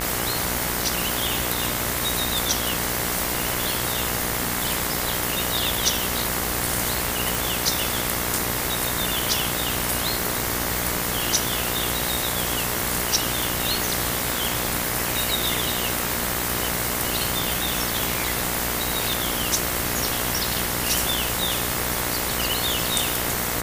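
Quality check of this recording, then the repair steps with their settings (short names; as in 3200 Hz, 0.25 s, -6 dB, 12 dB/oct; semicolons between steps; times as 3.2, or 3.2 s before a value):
buzz 60 Hz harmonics 37 -30 dBFS
7.35 pop
19.13 pop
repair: de-click; de-hum 60 Hz, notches 37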